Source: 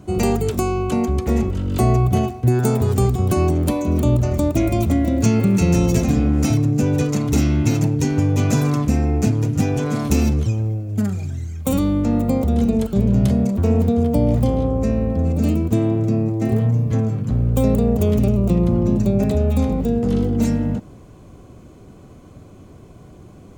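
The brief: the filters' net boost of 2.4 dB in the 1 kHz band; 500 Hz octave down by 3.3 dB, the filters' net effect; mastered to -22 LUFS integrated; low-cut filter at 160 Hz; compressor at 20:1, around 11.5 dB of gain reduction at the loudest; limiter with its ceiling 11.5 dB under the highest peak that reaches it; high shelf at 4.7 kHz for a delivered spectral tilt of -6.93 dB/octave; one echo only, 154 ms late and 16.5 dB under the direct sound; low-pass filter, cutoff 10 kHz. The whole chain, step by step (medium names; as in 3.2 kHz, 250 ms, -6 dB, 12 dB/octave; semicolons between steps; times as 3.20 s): high-pass 160 Hz; low-pass 10 kHz; peaking EQ 500 Hz -5.5 dB; peaking EQ 1 kHz +5.5 dB; treble shelf 4.7 kHz +7 dB; compression 20:1, threshold -27 dBFS; peak limiter -24.5 dBFS; delay 154 ms -16.5 dB; trim +11 dB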